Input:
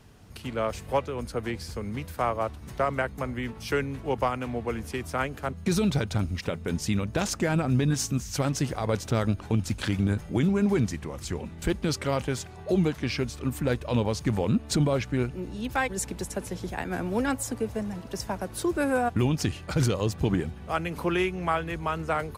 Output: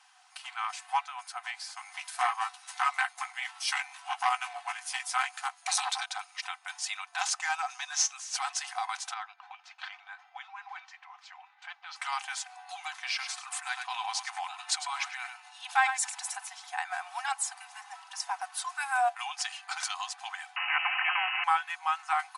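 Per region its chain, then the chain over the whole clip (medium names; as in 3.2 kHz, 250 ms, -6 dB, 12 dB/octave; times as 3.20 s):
1.77–6.06 s: treble shelf 2.6 kHz +9 dB + doubling 15 ms -7 dB + transformer saturation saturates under 1 kHz
7.42–8.13 s: median filter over 5 samples + peaking EQ 6.2 kHz +11.5 dB 0.49 oct
9.14–11.96 s: distance through air 230 m + flange 1.6 Hz, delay 2 ms, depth 3.4 ms, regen +77%
13.08–16.37 s: delay 102 ms -11 dB + decay stretcher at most 65 dB/s
20.56–21.44 s: frequency inversion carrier 2.8 kHz + spectrum-flattening compressor 4:1
whole clip: FFT band-pass 700–11000 Hz; comb 3.9 ms, depth 52%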